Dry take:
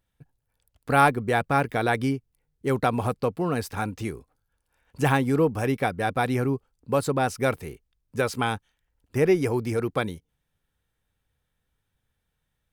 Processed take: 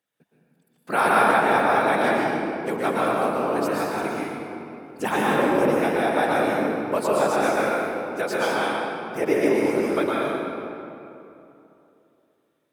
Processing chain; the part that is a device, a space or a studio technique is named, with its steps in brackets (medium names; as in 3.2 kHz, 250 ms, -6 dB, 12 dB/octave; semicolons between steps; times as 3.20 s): whispering ghost (whisper effect; high-pass 280 Hz 12 dB/octave; reverberation RT60 2.9 s, pre-delay 109 ms, DRR -6 dB); trim -2 dB